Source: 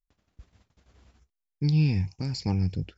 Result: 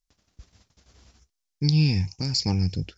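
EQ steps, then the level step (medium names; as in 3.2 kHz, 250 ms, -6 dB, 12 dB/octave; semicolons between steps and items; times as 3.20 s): peaking EQ 5.6 kHz +11.5 dB 1.2 oct; +2.0 dB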